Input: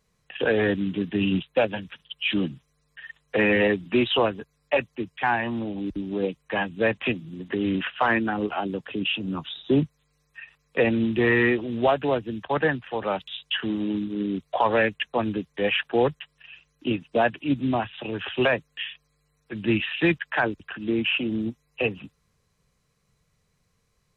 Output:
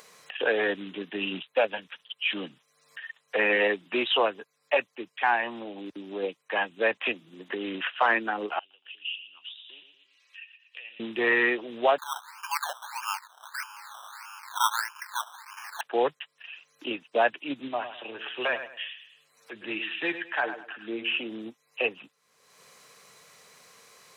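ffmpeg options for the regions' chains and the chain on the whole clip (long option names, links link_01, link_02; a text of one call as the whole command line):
ffmpeg -i in.wav -filter_complex "[0:a]asettb=1/sr,asplit=3[link_01][link_02][link_03];[link_01]atrim=end=1.374[link_04];[link_02]atrim=start=1.37:end=3.5,asetpts=PTS-STARTPTS,afade=type=in:duration=0.004:curve=qsin,afade=type=out:start_time=2.126:duration=0.004:curve=qsin,acrossover=split=3500[link_05][link_06];[link_06]acompressor=threshold=-43dB:ratio=4:attack=1:release=60[link_07];[link_05][link_07]amix=inputs=2:normalize=0,equalizer=frequency=350:width=7.1:gain=-6.5[link_08];[link_03]atrim=start=3.496[link_09];[link_04][link_08]acrossfade=duration=0.004:curve1=hsin:curve2=qsin[link_10];[link_10][link_09]acrossfade=duration=0.004:curve1=qsin:curve2=hsin,asettb=1/sr,asplit=3[link_11][link_12][link_13];[link_11]atrim=end=8.594[link_14];[link_12]atrim=start=8.59:end=11,asetpts=PTS-STARTPTS,afade=type=in:duration=0.004:curve=qsin,afade=type=out:start_time=2.406:duration=0.004:curve=qsin,acompressor=threshold=-29dB:ratio=2.5:attack=3.2:release=140:knee=1:detection=peak,bandpass=frequency=2900:width_type=q:width=7.5,aecho=1:1:116|232|348:0.251|0.0628|0.0157,atrim=end_sample=106281[link_15];[link_13]atrim=start=10.996[link_16];[link_14][link_15]acrossfade=duration=0.004:curve1=hsin:curve2=qsin[link_17];[link_17][link_16]acrossfade=duration=0.004:curve1=qsin:curve2=hsin,asettb=1/sr,asplit=3[link_18][link_19][link_20];[link_18]atrim=end=11.984[link_21];[link_19]atrim=start=11.98:end=15.81,asetpts=PTS-STARTPTS,afade=type=in:duration=0.004:curve=qsin,afade=type=out:start_time=3.826:duration=0.004:curve=qsin,aeval=exprs='val(0)+0.5*0.0335*sgn(val(0))':channel_layout=same,asuperpass=centerf=1200:order=12:qfactor=1.6,acrusher=samples=15:mix=1:aa=0.000001:lfo=1:lforange=9:lforate=1.6[link_22];[link_20]atrim=start=15.806[link_23];[link_21][link_22]acrossfade=duration=0.004:curve1=hsin:curve2=qsin[link_24];[link_24][link_23]acrossfade=duration=0.004:curve1=qsin:curve2=hsin,asettb=1/sr,asplit=3[link_25][link_26][link_27];[link_25]atrim=end=17.684[link_28];[link_26]atrim=start=17.68:end=21.2,asetpts=PTS-STARTPTS,afade=type=in:duration=0.004:curve=qsin,afade=type=out:start_time=3.516:duration=0.004:curve=qsin,flanger=delay=5.9:depth=3.2:regen=49:speed=1.4:shape=triangular,aecho=1:1:103|206|309:0.299|0.0896|0.0269,atrim=end_sample=155232[link_29];[link_27]atrim=start=21.196[link_30];[link_28][link_29]acrossfade=duration=0.004:curve1=hsin:curve2=qsin[link_31];[link_31][link_30]acrossfade=duration=0.004:curve1=qsin:curve2=hsin,highpass=490,acompressor=mode=upward:threshold=-37dB:ratio=2.5" out.wav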